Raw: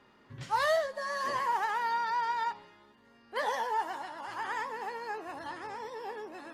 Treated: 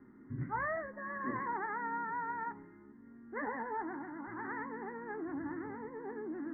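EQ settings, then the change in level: rippled Chebyshev low-pass 2100 Hz, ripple 3 dB; resonant low shelf 410 Hz +12 dB, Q 3; bell 1300 Hz +3.5 dB 2 oct; -5.5 dB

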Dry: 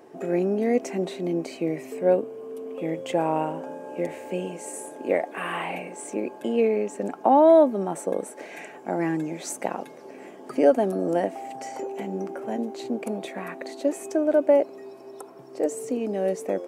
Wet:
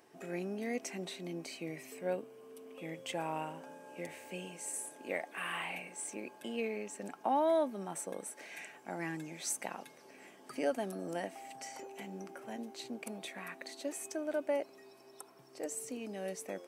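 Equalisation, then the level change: passive tone stack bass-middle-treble 5-5-5; notch 7000 Hz, Q 15; +4.0 dB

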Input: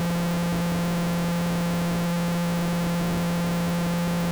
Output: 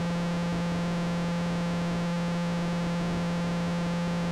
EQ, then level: LPF 6300 Hz 12 dB/oct; -4.0 dB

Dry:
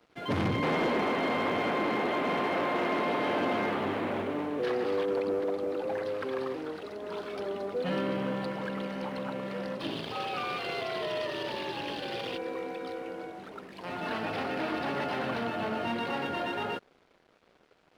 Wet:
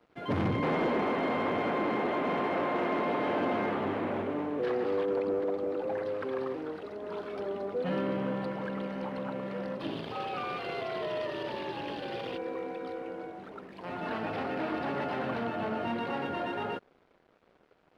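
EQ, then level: high shelf 3000 Hz -11 dB; 0.0 dB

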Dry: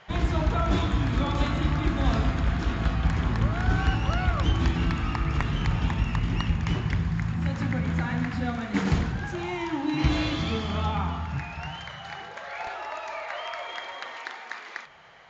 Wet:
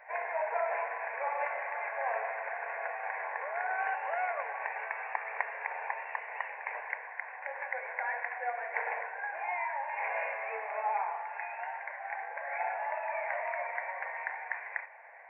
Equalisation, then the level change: brick-wall FIR band-pass 380–2900 Hz; fixed phaser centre 1900 Hz, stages 8; +2.0 dB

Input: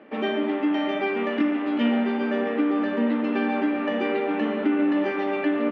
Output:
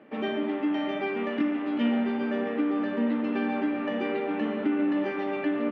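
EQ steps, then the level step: bell 120 Hz +9 dB 1.1 oct; -5.0 dB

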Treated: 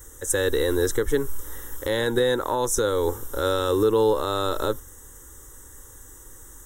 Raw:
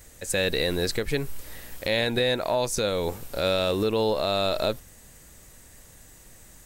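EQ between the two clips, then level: Butterworth band-stop 4500 Hz, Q 2.5; fixed phaser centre 660 Hz, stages 6; +6.5 dB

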